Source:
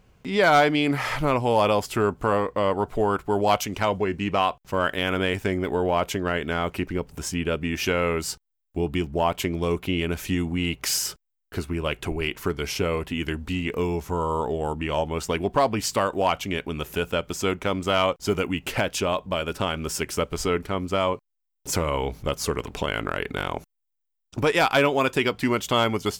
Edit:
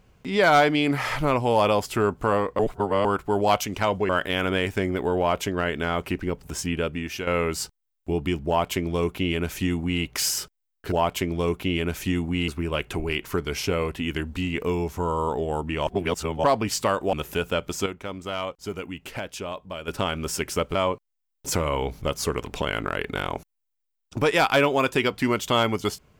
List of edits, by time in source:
0:02.59–0:03.05: reverse
0:04.09–0:04.77: remove
0:07.44–0:07.95: fade out, to −9.5 dB
0:09.15–0:10.71: duplicate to 0:11.60
0:14.99–0:15.56: reverse
0:16.25–0:16.74: remove
0:17.47–0:19.49: clip gain −8.5 dB
0:20.36–0:20.96: remove

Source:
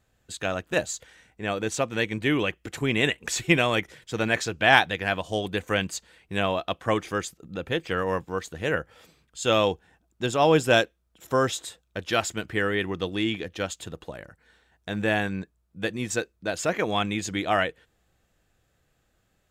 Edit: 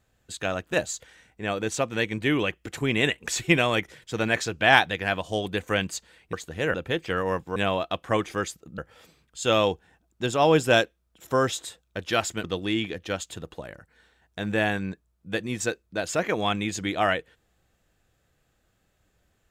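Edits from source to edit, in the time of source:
0:06.33–0:07.55: swap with 0:08.37–0:08.78
0:12.44–0:12.94: remove

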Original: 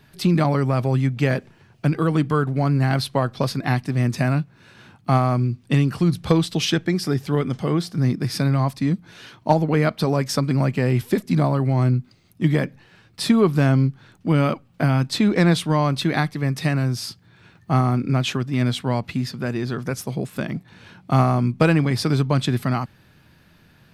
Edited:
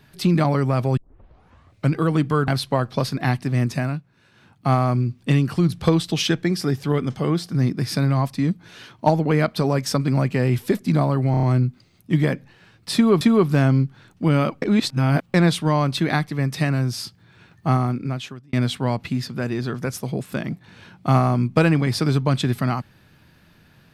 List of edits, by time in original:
0:00.97: tape start 0.95 s
0:02.48–0:02.91: remove
0:04.05–0:05.20: duck −8.5 dB, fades 0.41 s
0:11.74: stutter 0.03 s, 5 plays
0:13.25–0:13.52: repeat, 2 plays
0:14.66–0:15.38: reverse
0:17.72–0:18.57: fade out

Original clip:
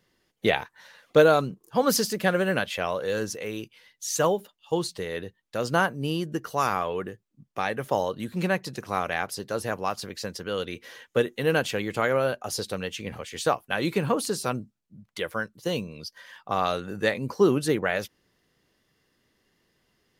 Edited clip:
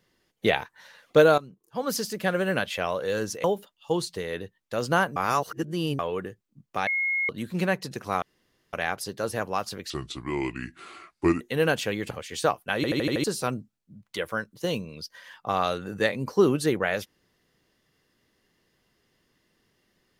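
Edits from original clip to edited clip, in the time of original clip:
0:01.38–0:02.66: fade in, from −16.5 dB
0:03.44–0:04.26: remove
0:05.98–0:06.81: reverse
0:07.69–0:08.11: beep over 2,160 Hz −23 dBFS
0:09.04: splice in room tone 0.51 s
0:10.21–0:11.28: play speed 71%
0:11.98–0:13.13: remove
0:13.78: stutter in place 0.08 s, 6 plays

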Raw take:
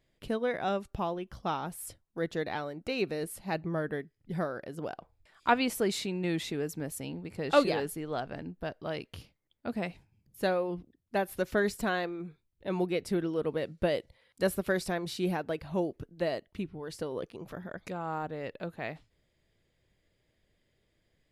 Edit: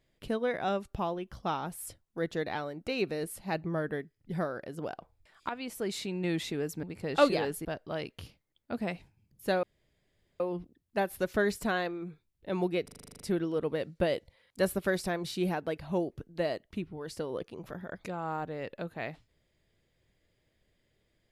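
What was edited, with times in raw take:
0:05.49–0:06.24: fade in, from −16 dB
0:06.83–0:07.18: remove
0:08.00–0:08.60: remove
0:10.58: splice in room tone 0.77 s
0:13.02: stutter 0.04 s, 10 plays

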